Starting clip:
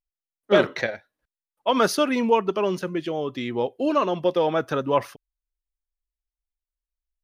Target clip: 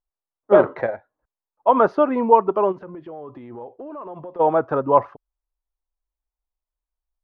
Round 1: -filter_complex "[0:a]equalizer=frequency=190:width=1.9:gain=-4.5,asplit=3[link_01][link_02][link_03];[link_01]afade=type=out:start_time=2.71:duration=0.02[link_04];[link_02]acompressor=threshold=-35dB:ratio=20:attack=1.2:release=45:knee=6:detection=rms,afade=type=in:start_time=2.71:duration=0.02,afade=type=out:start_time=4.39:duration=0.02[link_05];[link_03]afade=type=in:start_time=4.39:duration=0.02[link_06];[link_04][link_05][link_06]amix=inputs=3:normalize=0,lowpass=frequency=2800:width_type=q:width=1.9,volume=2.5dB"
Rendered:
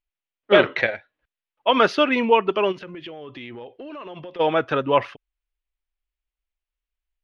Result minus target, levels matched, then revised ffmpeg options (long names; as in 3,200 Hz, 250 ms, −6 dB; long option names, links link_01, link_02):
2,000 Hz band +11.0 dB
-filter_complex "[0:a]equalizer=frequency=190:width=1.9:gain=-4.5,asplit=3[link_01][link_02][link_03];[link_01]afade=type=out:start_time=2.71:duration=0.02[link_04];[link_02]acompressor=threshold=-35dB:ratio=20:attack=1.2:release=45:knee=6:detection=rms,afade=type=in:start_time=2.71:duration=0.02,afade=type=out:start_time=4.39:duration=0.02[link_05];[link_03]afade=type=in:start_time=4.39:duration=0.02[link_06];[link_04][link_05][link_06]amix=inputs=3:normalize=0,lowpass=frequency=970:width_type=q:width=1.9,volume=2.5dB"